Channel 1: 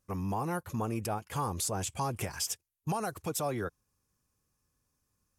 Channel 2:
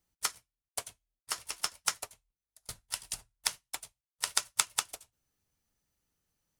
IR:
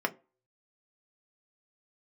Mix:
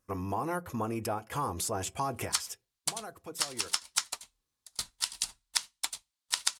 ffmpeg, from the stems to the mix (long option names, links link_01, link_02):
-filter_complex "[0:a]volume=-1.5dB,afade=type=out:start_time=2.16:duration=0.7:silence=0.298538,asplit=2[link_01][link_02];[link_02]volume=-11dB[link_03];[1:a]equalizer=frequency=125:width_type=o:width=1:gain=-6,equalizer=frequency=250:width_type=o:width=1:gain=8,equalizer=frequency=500:width_type=o:width=1:gain=-5,equalizer=frequency=1000:width_type=o:width=1:gain=7,equalizer=frequency=2000:width_type=o:width=1:gain=3,equalizer=frequency=4000:width_type=o:width=1:gain=11,equalizer=frequency=8000:width_type=o:width=1:gain=7,adelay=2100,volume=0dB[link_04];[2:a]atrim=start_sample=2205[link_05];[link_03][link_05]afir=irnorm=-1:irlink=0[link_06];[link_01][link_04][link_06]amix=inputs=3:normalize=0,acompressor=threshold=-28dB:ratio=3"